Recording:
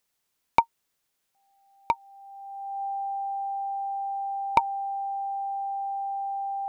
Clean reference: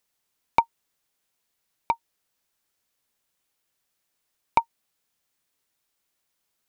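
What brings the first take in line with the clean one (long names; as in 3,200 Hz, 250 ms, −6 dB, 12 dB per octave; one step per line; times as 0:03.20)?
notch filter 790 Hz, Q 30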